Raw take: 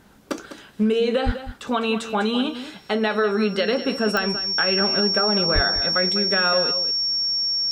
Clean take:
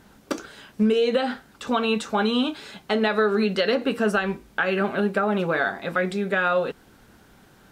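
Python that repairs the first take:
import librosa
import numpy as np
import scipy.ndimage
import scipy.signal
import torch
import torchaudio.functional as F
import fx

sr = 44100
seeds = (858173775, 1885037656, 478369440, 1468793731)

y = fx.fix_declick_ar(x, sr, threshold=10.0)
y = fx.notch(y, sr, hz=5500.0, q=30.0)
y = fx.fix_deplosive(y, sr, at_s=(1.25, 5.54))
y = fx.fix_echo_inverse(y, sr, delay_ms=201, level_db=-12.0)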